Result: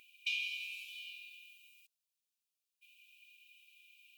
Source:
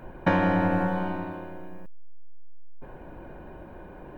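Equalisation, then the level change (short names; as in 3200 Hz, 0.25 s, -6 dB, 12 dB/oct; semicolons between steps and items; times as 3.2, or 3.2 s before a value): brick-wall FIR high-pass 2300 Hz; +6.0 dB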